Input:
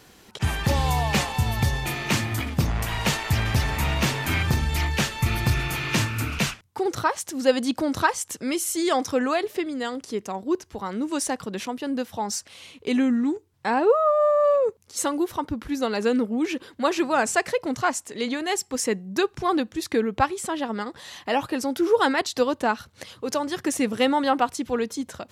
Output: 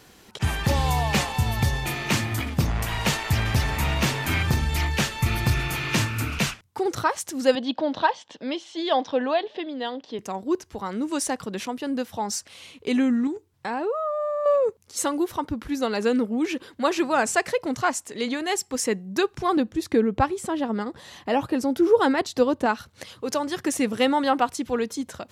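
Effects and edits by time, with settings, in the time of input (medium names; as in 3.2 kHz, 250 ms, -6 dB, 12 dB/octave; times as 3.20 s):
7.55–10.19 s: cabinet simulation 240–4000 Hz, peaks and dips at 380 Hz -7 dB, 610 Hz +4 dB, 880 Hz +4 dB, 1.3 kHz -9 dB, 2.2 kHz -7 dB, 3.4 kHz +6 dB
13.27–14.46 s: compression 2.5:1, threshold -27 dBFS
19.57–22.66 s: tilt shelf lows +4.5 dB, about 740 Hz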